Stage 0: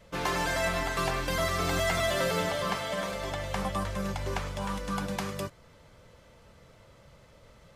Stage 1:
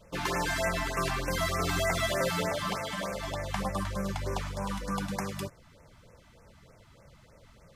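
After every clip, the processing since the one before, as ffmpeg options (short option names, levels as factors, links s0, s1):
-af "afftfilt=real='re*(1-between(b*sr/1024,420*pow(3900/420,0.5+0.5*sin(2*PI*3.3*pts/sr))/1.41,420*pow(3900/420,0.5+0.5*sin(2*PI*3.3*pts/sr))*1.41))':imag='im*(1-between(b*sr/1024,420*pow(3900/420,0.5+0.5*sin(2*PI*3.3*pts/sr))/1.41,420*pow(3900/420,0.5+0.5*sin(2*PI*3.3*pts/sr))*1.41))':win_size=1024:overlap=0.75"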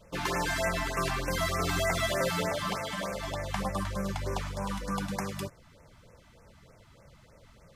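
-af anull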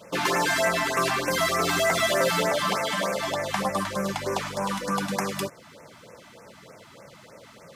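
-filter_complex "[0:a]asplit=2[s0][s1];[s1]acompressor=threshold=0.0112:ratio=6,volume=0.75[s2];[s0][s2]amix=inputs=2:normalize=0,asoftclip=type=tanh:threshold=0.106,highpass=210,volume=2.11"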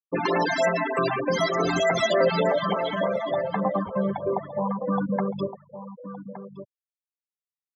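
-filter_complex "[0:a]afftfilt=real='re*gte(hypot(re,im),0.1)':imag='im*gte(hypot(re,im),0.1)':win_size=1024:overlap=0.75,firequalizer=gain_entry='entry(470,0);entry(1300,-7);entry(5700,-1)':delay=0.05:min_phase=1,asplit=2[s0][s1];[s1]adelay=1166,volume=0.251,highshelf=f=4000:g=-26.2[s2];[s0][s2]amix=inputs=2:normalize=0,volume=1.68"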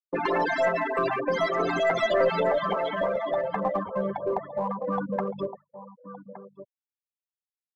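-filter_complex "[0:a]agate=range=0.0224:threshold=0.0178:ratio=3:detection=peak,bass=f=250:g=-8,treble=f=4000:g=-14,asplit=2[s0][s1];[s1]aeval=exprs='clip(val(0),-1,0.0562)':c=same,volume=0.355[s2];[s0][s2]amix=inputs=2:normalize=0,volume=0.708"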